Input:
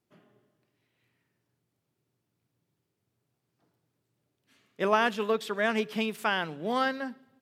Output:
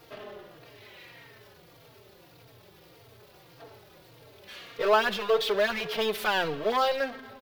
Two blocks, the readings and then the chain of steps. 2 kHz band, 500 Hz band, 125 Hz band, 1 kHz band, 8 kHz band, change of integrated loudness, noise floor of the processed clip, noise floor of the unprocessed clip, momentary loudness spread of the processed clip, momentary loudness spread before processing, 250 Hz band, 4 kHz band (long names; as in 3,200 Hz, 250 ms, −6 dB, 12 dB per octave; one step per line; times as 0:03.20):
+1.0 dB, +4.0 dB, −1.5 dB, +2.0 dB, +3.5 dB, +2.5 dB, −56 dBFS, −82 dBFS, 20 LU, 7 LU, −5.5 dB, +5.5 dB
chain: power curve on the samples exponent 0.5
graphic EQ with 10 bands 125 Hz −5 dB, 250 Hz −11 dB, 500 Hz +6 dB, 4,000 Hz +5 dB, 8,000 Hz −11 dB
barber-pole flanger 3.8 ms −1.7 Hz
level −2 dB